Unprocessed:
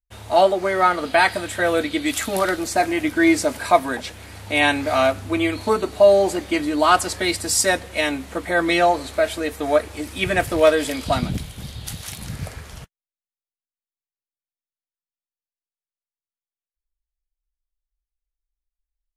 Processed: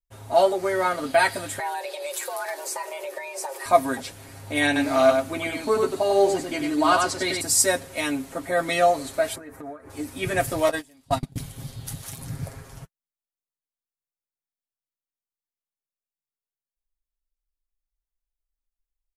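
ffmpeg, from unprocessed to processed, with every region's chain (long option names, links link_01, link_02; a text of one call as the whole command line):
ffmpeg -i in.wav -filter_complex "[0:a]asettb=1/sr,asplit=3[link_01][link_02][link_03];[link_01]atrim=end=1.594[link_04];[link_02]atrim=start=1.59:end=3.66,asetpts=PTS-STARTPTS,afade=type=in:duration=0.004:curve=qsin,afade=type=out:start_time=2.066:duration=0.004:curve=qsin,afreqshift=280,acompressor=threshold=-23dB:ratio=4:attack=3.2:release=140:knee=1:detection=peak[link_05];[link_03]atrim=start=3.656[link_06];[link_04][link_05]acrossfade=duration=0.004:curve1=hsin:curve2=qsin[link_07];[link_07][link_06]acrossfade=duration=0.004:curve1=qsin:curve2=hsin,asettb=1/sr,asplit=3[link_08][link_09][link_10];[link_08]atrim=end=4.664[link_11];[link_09]atrim=start=4.66:end=7.41,asetpts=PTS-STARTPTS,afade=type=in:duration=0.004:curve=qsin,afade=type=out:start_time=2.746:duration=0.004:curve=qsin,acrossover=split=7400[link_12][link_13];[link_13]acompressor=threshold=-49dB:ratio=4:attack=1:release=60[link_14];[link_12][link_14]amix=inputs=2:normalize=0,aecho=1:1:96:0.631,atrim=end_sample=121275[link_15];[link_10]atrim=start=7.406[link_16];[link_11][link_15]acrossfade=duration=0.004:curve1=hsin:curve2=qsin[link_17];[link_17][link_16]acrossfade=duration=0.004:curve1=qsin:curve2=hsin,asettb=1/sr,asplit=3[link_18][link_19][link_20];[link_18]atrim=end=9.354[link_21];[link_19]atrim=start=9.35:end=9.9,asetpts=PTS-STARTPTS,afade=type=in:duration=0.004:curve=qsin,afade=type=out:start_time=0.546:duration=0.004:curve=qsin,highshelf=frequency=2300:width_type=q:width=1.5:gain=-11,acompressor=threshold=-30dB:ratio=16:attack=3.2:release=140:knee=1:detection=peak[link_22];[link_20]atrim=start=9.896[link_23];[link_21][link_22]acrossfade=duration=0.004:curve1=hsin:curve2=qsin[link_24];[link_24][link_23]acrossfade=duration=0.004:curve1=qsin:curve2=hsin,asettb=1/sr,asplit=3[link_25][link_26][link_27];[link_25]atrim=end=10.694[link_28];[link_26]atrim=start=10.69:end=11.36,asetpts=PTS-STARTPTS,afade=type=in:duration=0.004:curve=qsin,afade=type=out:start_time=0.666:duration=0.004:curve=qsin,agate=range=-27dB:threshold=-20dB:ratio=16:release=100:detection=peak,aecho=1:1:1.1:0.3,atrim=end_sample=29547[link_29];[link_27]atrim=start=11.356[link_30];[link_28][link_29]acrossfade=duration=0.004:curve1=hsin:curve2=qsin[link_31];[link_31][link_30]acrossfade=duration=0.004:curve1=qsin:curve2=hsin,equalizer=frequency=3100:width=0.7:gain=-9,aecho=1:1:7.4:0.75,adynamicequalizer=threshold=0.0251:dfrequency=2000:dqfactor=0.7:tfrequency=2000:tqfactor=0.7:attack=5:release=100:ratio=0.375:range=3:mode=boostabove:tftype=highshelf,volume=-4dB" out.wav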